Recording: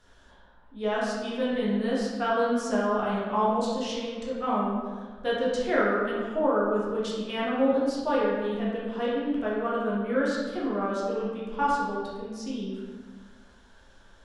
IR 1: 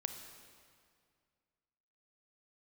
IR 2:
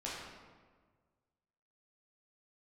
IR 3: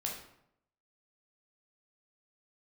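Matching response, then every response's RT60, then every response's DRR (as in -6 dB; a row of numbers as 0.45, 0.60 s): 2; 2.1, 1.5, 0.75 s; 6.0, -7.5, -1.5 dB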